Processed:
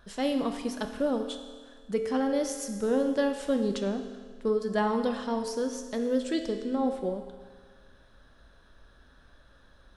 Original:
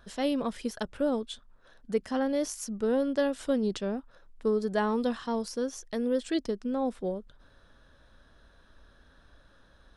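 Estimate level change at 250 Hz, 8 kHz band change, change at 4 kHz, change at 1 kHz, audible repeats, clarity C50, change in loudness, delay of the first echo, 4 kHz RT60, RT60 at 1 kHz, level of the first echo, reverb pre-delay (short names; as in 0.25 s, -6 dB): +1.0 dB, +1.0 dB, +1.0 dB, +2.0 dB, none, 7.0 dB, +1.0 dB, none, 1.6 s, 1.6 s, none, 8 ms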